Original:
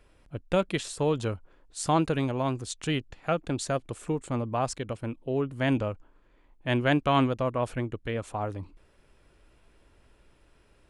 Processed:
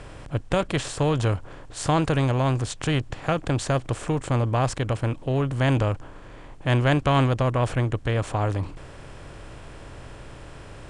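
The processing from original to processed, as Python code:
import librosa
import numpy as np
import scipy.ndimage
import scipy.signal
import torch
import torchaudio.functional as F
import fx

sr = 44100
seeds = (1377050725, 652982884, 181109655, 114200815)

y = fx.bin_compress(x, sr, power=0.6)
y = scipy.signal.sosfilt(scipy.signal.butter(4, 9900.0, 'lowpass', fs=sr, output='sos'), y)
y = fx.low_shelf_res(y, sr, hz=160.0, db=7.0, q=1.5)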